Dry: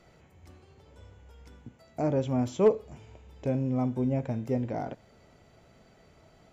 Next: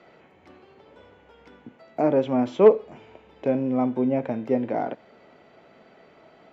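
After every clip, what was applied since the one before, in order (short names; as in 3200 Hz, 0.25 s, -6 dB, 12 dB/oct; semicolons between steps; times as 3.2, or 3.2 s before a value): three-band isolator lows -22 dB, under 200 Hz, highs -24 dB, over 3900 Hz; gain +8 dB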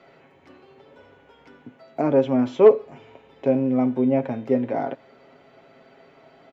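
comb 7.4 ms, depth 52%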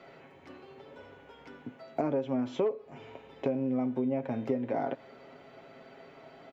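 compressor 8:1, threshold -27 dBFS, peak gain reduction 19 dB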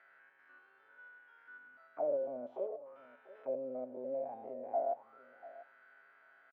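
stepped spectrum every 0.1 s; auto-wah 580–1700 Hz, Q 10, down, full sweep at -28.5 dBFS; echo 0.691 s -18 dB; gain +6 dB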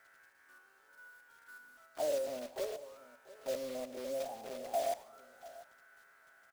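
block floating point 3-bit; reverb RT60 0.90 s, pre-delay 68 ms, DRR 17.5 dB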